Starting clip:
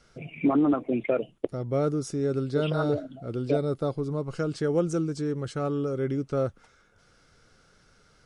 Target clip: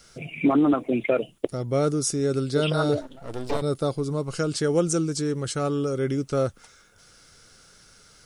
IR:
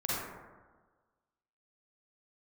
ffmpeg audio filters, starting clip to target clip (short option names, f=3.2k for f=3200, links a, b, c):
-filter_complex "[0:a]crystalizer=i=3.5:c=0,asettb=1/sr,asplit=3[a][b][c];[a]atrim=end=3.014[d];[b]atrim=start=3.01:end=3.62,asetpts=PTS-STARTPTS,afade=t=in:d=0.004:c=qsin,afade=t=out:st=0.606:d=0.004:c=qsin,aeval=exprs='max(val(0),0)':c=same[e];[c]atrim=start=3.616[f];[d][e]acrossfade=d=0.004:c1=hsin:c2=qsin[g];[g][f]acrossfade=d=0.004:c1=qsin:c2=hsin,volume=2.5dB"